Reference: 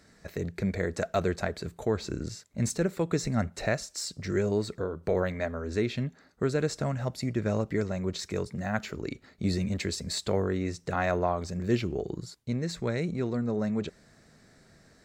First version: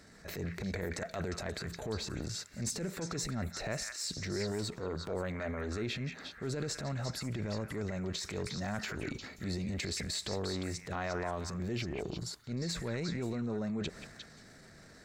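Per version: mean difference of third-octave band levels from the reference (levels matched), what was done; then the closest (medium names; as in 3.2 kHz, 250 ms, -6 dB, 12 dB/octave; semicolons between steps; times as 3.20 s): 7.0 dB: compression, threshold -35 dBFS, peak gain reduction 14.5 dB; transient shaper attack -9 dB, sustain +8 dB; on a send: repeats whose band climbs or falls 177 ms, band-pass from 1.7 kHz, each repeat 1.4 oct, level -1.5 dB; on the sum: trim +2 dB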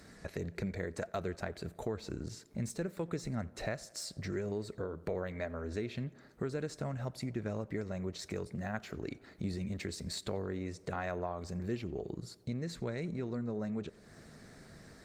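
3.5 dB: compression 2.5:1, threshold -46 dBFS, peak gain reduction 17 dB; on a send: tape echo 89 ms, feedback 81%, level -21 dB, low-pass 2.9 kHz; on the sum: trim +5 dB; Opus 32 kbps 48 kHz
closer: second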